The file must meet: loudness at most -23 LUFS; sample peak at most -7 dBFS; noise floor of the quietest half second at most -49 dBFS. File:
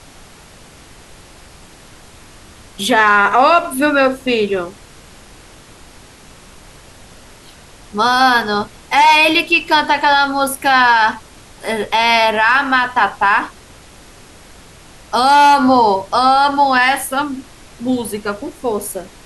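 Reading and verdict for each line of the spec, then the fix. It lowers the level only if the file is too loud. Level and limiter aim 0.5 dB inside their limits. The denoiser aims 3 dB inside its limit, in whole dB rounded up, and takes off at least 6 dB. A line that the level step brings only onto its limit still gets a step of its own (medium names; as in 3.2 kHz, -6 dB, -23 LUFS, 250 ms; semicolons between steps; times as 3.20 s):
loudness -13.5 LUFS: fail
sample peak -2.5 dBFS: fail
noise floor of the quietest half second -41 dBFS: fail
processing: trim -10 dB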